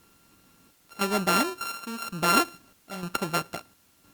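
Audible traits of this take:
a buzz of ramps at a fixed pitch in blocks of 32 samples
chopped level 0.99 Hz, depth 65%, duty 70%
a quantiser's noise floor 10 bits, dither triangular
Opus

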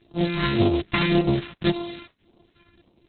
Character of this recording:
a buzz of ramps at a fixed pitch in blocks of 128 samples
phaser sweep stages 2, 1.8 Hz, lowest notch 500–1,700 Hz
Opus

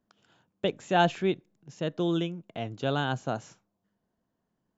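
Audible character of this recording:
background noise floor −81 dBFS
spectral slope −4.5 dB per octave

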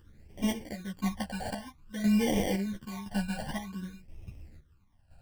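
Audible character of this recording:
aliases and images of a low sample rate 1,300 Hz, jitter 0%
phaser sweep stages 12, 0.53 Hz, lowest notch 350–1,400 Hz
chopped level 0.98 Hz, depth 65%, duty 50%
a shimmering, thickened sound

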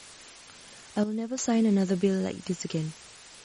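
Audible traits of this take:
a quantiser's noise floor 8 bits, dither triangular
sample-and-hold tremolo 2.9 Hz, depth 70%
MP3

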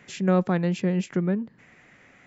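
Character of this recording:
background noise floor −56 dBFS
spectral slope −6.5 dB per octave

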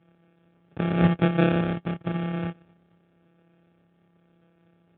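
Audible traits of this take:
a buzz of ramps at a fixed pitch in blocks of 256 samples
phaser sweep stages 4, 0.94 Hz, lowest notch 630–1,800 Hz
aliases and images of a low sample rate 1,000 Hz, jitter 0%
AMR narrowband

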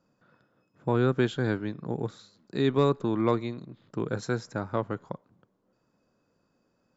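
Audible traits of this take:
background noise floor −73 dBFS
spectral slope −6.5 dB per octave

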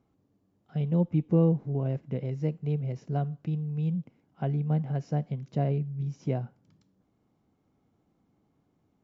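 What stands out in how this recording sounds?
background noise floor −73 dBFS
spectral slope −8.5 dB per octave

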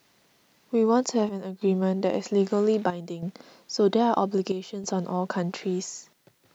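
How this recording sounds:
chopped level 0.62 Hz, depth 65%, duty 80%
a quantiser's noise floor 12 bits, dither triangular

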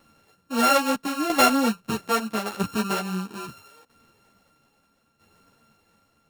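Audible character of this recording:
a buzz of ramps at a fixed pitch in blocks of 32 samples
tremolo saw down 0.77 Hz, depth 75%
a shimmering, thickened sound

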